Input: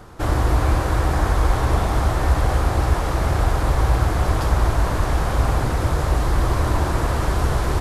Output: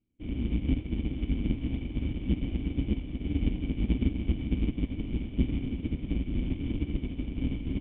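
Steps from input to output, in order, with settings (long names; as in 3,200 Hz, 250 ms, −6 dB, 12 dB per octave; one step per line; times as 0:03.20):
each half-wave held at its own peak
formant resonators in series i
on a send: feedback delay with all-pass diffusion 1,024 ms, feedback 55%, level −9 dB
on the sum: expander for the loud parts 2.5 to 1, over −41 dBFS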